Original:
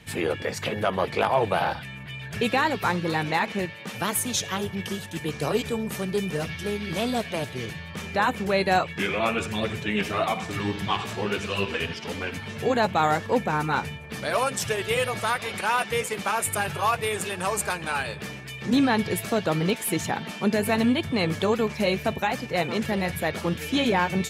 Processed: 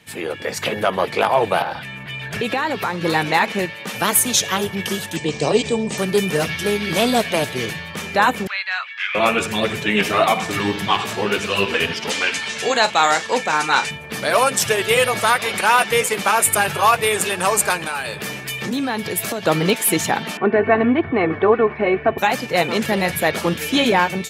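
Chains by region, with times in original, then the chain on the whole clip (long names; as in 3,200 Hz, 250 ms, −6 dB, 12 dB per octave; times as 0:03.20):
0:01.62–0:03.01: high-shelf EQ 5,400 Hz −6.5 dB + downward compressor 4 to 1, threshold −28 dBFS
0:05.16–0:05.98: Chebyshev low-pass filter 8,400 Hz, order 5 + parametric band 1,400 Hz −11.5 dB 0.54 octaves
0:08.47–0:09.15: high-pass filter 1,400 Hz 24 dB per octave + high-frequency loss of the air 230 metres
0:12.10–0:13.91: low-pass filter 8,100 Hz 24 dB per octave + spectral tilt +3.5 dB per octave + double-tracking delay 36 ms −13 dB
0:17.81–0:19.43: downward compressor 4 to 1, threshold −30 dBFS + high-shelf EQ 12,000 Hz +8.5 dB
0:20.37–0:22.18: low-pass filter 2,000 Hz 24 dB per octave + comb filter 2.7 ms, depth 55%
whole clip: high-pass filter 230 Hz 6 dB per octave; high-shelf EQ 9,800 Hz +4.5 dB; automatic gain control gain up to 11 dB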